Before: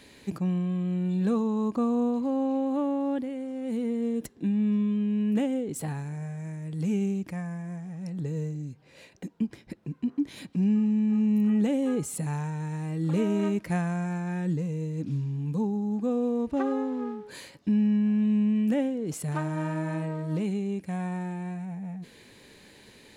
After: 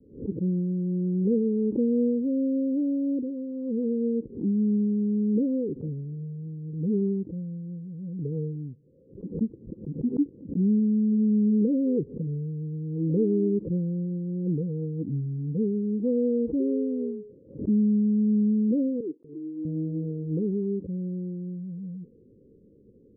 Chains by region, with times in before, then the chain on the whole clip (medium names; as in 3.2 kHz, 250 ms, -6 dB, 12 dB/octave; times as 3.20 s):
19.00–19.65 s: Butterworth band-pass 340 Hz, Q 2.3 + gate -52 dBFS, range -36 dB
whole clip: dynamic bell 400 Hz, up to +5 dB, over -38 dBFS, Q 1.3; steep low-pass 520 Hz 96 dB/octave; swell ahead of each attack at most 140 dB/s